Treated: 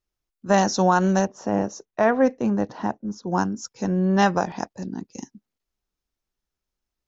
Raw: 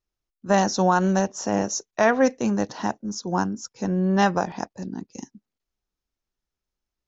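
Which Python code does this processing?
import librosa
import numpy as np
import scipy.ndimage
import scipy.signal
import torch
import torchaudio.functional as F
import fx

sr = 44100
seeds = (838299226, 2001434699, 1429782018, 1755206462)

y = fx.lowpass(x, sr, hz=1300.0, slope=6, at=(1.25, 3.32))
y = F.gain(torch.from_numpy(y), 1.0).numpy()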